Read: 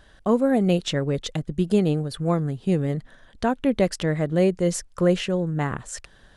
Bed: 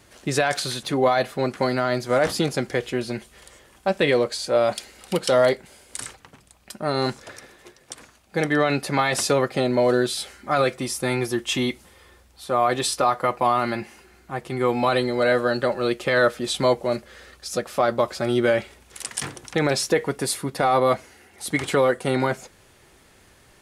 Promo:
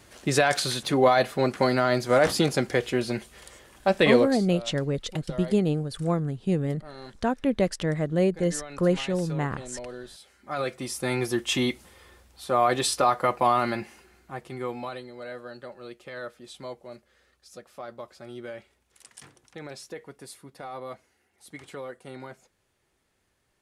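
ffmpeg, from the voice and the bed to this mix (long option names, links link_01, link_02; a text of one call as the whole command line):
ffmpeg -i stem1.wav -i stem2.wav -filter_complex "[0:a]adelay=3800,volume=-3dB[link_01];[1:a]volume=18.5dB,afade=type=out:start_time=4.18:duration=0.27:silence=0.1,afade=type=in:start_time=10.21:duration=1.18:silence=0.11885,afade=type=out:start_time=13.55:duration=1.47:silence=0.133352[link_02];[link_01][link_02]amix=inputs=2:normalize=0" out.wav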